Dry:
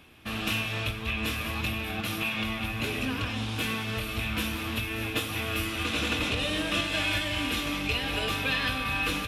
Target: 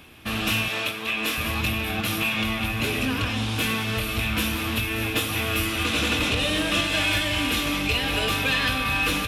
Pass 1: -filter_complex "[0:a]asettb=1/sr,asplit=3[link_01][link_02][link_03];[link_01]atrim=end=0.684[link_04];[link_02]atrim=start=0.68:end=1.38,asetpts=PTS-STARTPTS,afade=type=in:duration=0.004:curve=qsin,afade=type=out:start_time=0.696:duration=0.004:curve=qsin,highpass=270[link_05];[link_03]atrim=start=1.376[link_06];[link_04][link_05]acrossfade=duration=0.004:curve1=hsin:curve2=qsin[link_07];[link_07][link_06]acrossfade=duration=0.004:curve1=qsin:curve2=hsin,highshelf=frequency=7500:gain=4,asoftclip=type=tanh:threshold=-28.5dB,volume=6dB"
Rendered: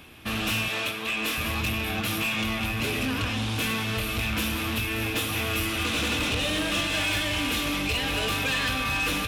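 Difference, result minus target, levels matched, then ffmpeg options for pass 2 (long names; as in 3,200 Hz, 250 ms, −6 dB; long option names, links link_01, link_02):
soft clipping: distortion +9 dB
-filter_complex "[0:a]asettb=1/sr,asplit=3[link_01][link_02][link_03];[link_01]atrim=end=0.684[link_04];[link_02]atrim=start=0.68:end=1.38,asetpts=PTS-STARTPTS,afade=type=in:duration=0.004:curve=qsin,afade=type=out:start_time=0.696:duration=0.004:curve=qsin,highpass=270[link_05];[link_03]atrim=start=1.376[link_06];[link_04][link_05]acrossfade=duration=0.004:curve1=hsin:curve2=qsin[link_07];[link_07][link_06]acrossfade=duration=0.004:curve1=qsin:curve2=hsin,highshelf=frequency=7500:gain=4,asoftclip=type=tanh:threshold=-20.5dB,volume=6dB"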